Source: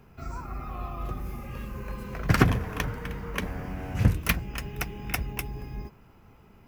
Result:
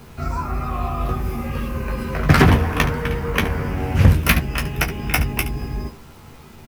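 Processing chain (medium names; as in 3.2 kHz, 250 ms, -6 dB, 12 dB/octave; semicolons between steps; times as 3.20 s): peaking EQ 7 kHz -6 dB 0.32 oct; word length cut 10-bit, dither none; doubling 13 ms -5.5 dB; early reflections 21 ms -10 dB, 72 ms -14 dB; loudness maximiser +10.5 dB; loudspeaker Doppler distortion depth 0.4 ms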